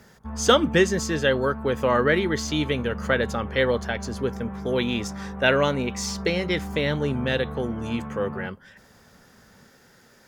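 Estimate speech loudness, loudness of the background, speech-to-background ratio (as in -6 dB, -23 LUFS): -24.5 LUFS, -35.0 LUFS, 10.5 dB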